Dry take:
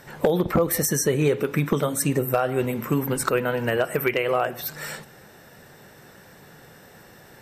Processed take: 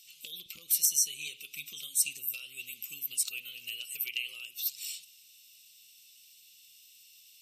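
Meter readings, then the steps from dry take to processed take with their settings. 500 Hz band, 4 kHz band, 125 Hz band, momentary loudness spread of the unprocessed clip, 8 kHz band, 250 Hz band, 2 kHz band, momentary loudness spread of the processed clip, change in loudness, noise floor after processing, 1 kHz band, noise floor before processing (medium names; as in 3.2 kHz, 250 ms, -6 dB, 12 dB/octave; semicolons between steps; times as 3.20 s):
under -40 dB, -0.5 dB, under -40 dB, 7 LU, 0.0 dB, under -40 dB, -12.0 dB, 16 LU, -8.5 dB, -58 dBFS, under -40 dB, -49 dBFS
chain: elliptic high-pass 2.7 kHz, stop band 40 dB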